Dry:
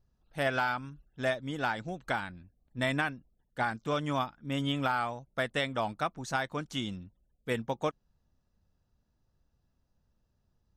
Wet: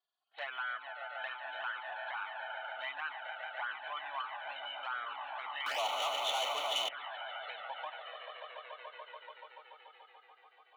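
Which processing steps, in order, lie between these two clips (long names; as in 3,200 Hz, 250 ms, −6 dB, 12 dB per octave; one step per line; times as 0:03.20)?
hearing-aid frequency compression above 2,900 Hz 4 to 1
high-frequency loss of the air 120 metres
echo that builds up and dies away 144 ms, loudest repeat 5, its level −13 dB
0:05.66–0:06.89: leveller curve on the samples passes 5
brickwall limiter −24 dBFS, peak gain reduction 7.5 dB
high-pass filter 720 Hz 24 dB per octave
flanger swept by the level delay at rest 2.8 ms, full sweep at −27.5 dBFS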